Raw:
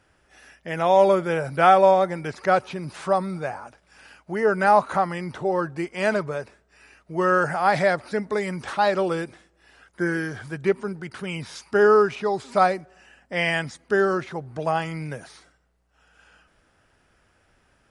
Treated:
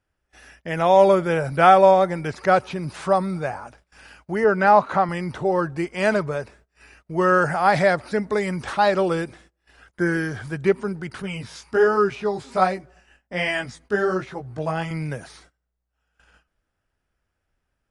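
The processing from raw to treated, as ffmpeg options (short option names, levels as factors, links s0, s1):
-filter_complex "[0:a]asettb=1/sr,asplit=3[s0][s1][s2];[s0]atrim=end=4.444[s3];[s1]atrim=start=4.44:end=5.09,asetpts=PTS-STARTPTS,afade=t=in:d=0.004:c=qsin,afade=t=out:st=0.646:d=0.004:c=qsin,highpass=110,lowpass=5000[s4];[s2]atrim=start=5.086[s5];[s3][s4]acrossfade=d=0.004:c1=hsin:c2=qsin[s6];[s6][s5]acrossfade=d=0.004:c1=qsin:c2=hsin,asettb=1/sr,asplit=3[s7][s8][s9];[s7]atrim=end=11.224[s10];[s8]atrim=start=11.22:end=14.91,asetpts=PTS-STARTPTS,afade=t=in:d=0.004:c=qsin,afade=t=out:st=3.686:d=0.004:c=qsin,flanger=delay=15:depth=4.6:speed=1.3[s11];[s9]atrim=start=14.906[s12];[s10][s11]acrossfade=d=0.004:c1=hsin:c2=qsin[s13];[s13][s12]acrossfade=d=0.004:c1=qsin:c2=hsin,agate=range=0.112:threshold=0.002:ratio=16:detection=peak,lowshelf=f=75:g=11.5,volume=1.26"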